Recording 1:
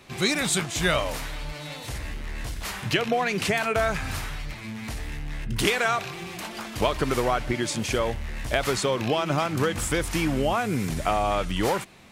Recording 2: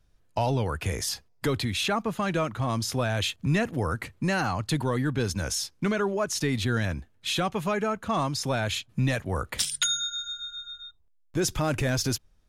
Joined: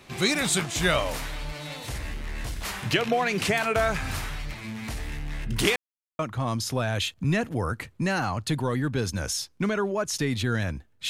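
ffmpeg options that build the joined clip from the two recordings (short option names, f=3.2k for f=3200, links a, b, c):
-filter_complex "[0:a]apad=whole_dur=11.09,atrim=end=11.09,asplit=2[a][b];[a]atrim=end=5.76,asetpts=PTS-STARTPTS,afade=t=out:st=5.756:d=0.004:c=hsin[c];[b]atrim=start=5.76:end=6.19,asetpts=PTS-STARTPTS,volume=0[d];[1:a]atrim=start=2.41:end=7.31,asetpts=PTS-STARTPTS,afade=t=in:d=0.004:c=hsin[e];[c][d][e]concat=n=3:v=0:a=1"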